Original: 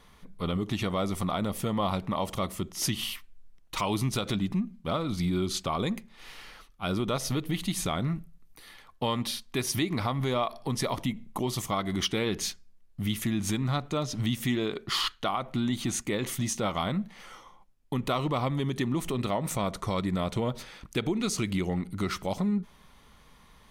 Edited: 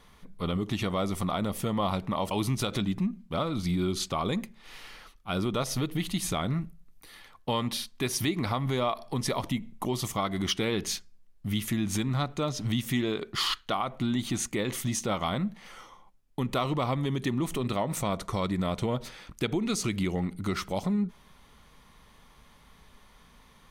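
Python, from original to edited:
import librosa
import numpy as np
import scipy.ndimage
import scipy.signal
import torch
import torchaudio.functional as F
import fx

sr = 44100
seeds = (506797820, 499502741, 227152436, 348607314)

y = fx.edit(x, sr, fx.cut(start_s=2.31, length_s=1.54), tone=tone)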